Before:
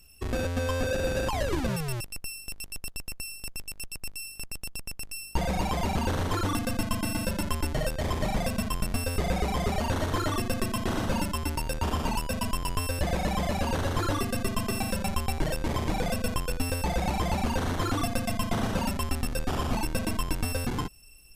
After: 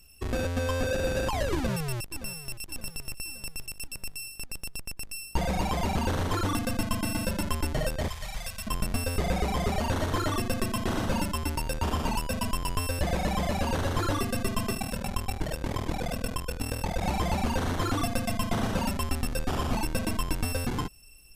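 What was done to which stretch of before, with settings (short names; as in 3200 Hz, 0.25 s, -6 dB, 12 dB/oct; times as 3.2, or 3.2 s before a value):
1.54–2.66 echo throw 0.57 s, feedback 55%, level -14 dB
8.08–8.67 passive tone stack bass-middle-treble 10-0-10
14.73–17.03 ring modulator 20 Hz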